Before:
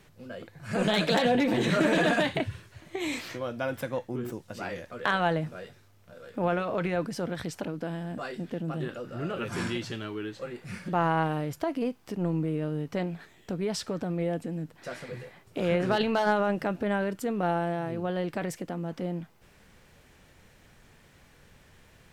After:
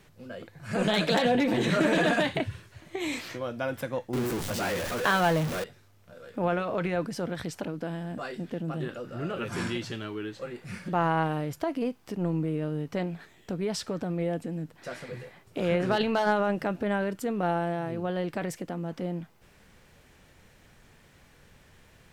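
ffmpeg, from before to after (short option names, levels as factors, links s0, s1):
-filter_complex "[0:a]asettb=1/sr,asplit=3[s0][s1][s2];[s0]atrim=end=4.134[s3];[s1]atrim=start=4.13:end=5.64,asetpts=PTS-STARTPTS,afade=t=in:d=0.004:c=qsin,afade=t=out:st=1.506:d=0.004:c=qsin,aeval=exprs='val(0)+0.5*0.0398*sgn(val(0))':c=same[s4];[s2]atrim=start=5.636[s5];[s3][s4]acrossfade=d=0.004:c1=hsin:c2=qsin[s6];[s6][s5]acrossfade=d=0.004:c1=qsin:c2=hsin"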